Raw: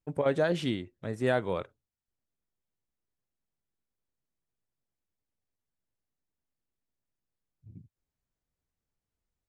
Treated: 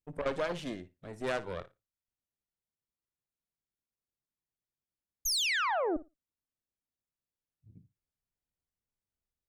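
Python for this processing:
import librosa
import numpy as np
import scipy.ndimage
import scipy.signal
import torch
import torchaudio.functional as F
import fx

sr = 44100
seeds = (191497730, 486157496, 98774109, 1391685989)

y = fx.spec_paint(x, sr, seeds[0], shape='fall', start_s=5.25, length_s=0.72, low_hz=280.0, high_hz=6800.0, level_db=-24.0)
y = fx.cheby_harmonics(y, sr, harmonics=(6,), levels_db=(-14,), full_scale_db=-13.5)
y = fx.room_flutter(y, sr, wall_m=9.9, rt60_s=0.21)
y = y * 10.0 ** (-7.0 / 20.0)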